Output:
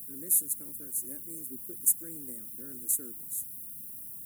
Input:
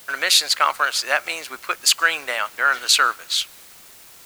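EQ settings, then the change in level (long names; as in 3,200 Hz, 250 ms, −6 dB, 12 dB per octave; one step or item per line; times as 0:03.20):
high-pass filter 100 Hz 6 dB per octave
inverse Chebyshev band-stop filter 640–5,100 Hz, stop band 50 dB
notch filter 2,500 Hz, Q 17
+5.5 dB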